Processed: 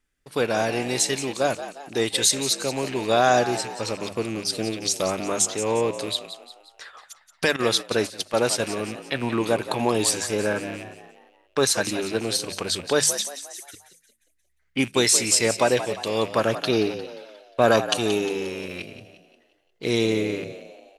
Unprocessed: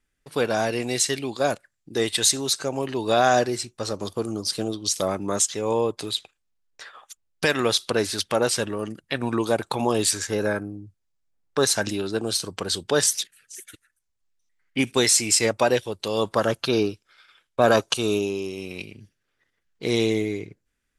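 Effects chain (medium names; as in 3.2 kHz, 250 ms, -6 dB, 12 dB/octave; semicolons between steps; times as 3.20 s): rattle on loud lows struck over -38 dBFS, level -27 dBFS; hum notches 50/100/150/200 Hz; frequency-shifting echo 177 ms, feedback 46%, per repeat +66 Hz, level -12 dB; 7.56–8.60 s: gate -24 dBFS, range -13 dB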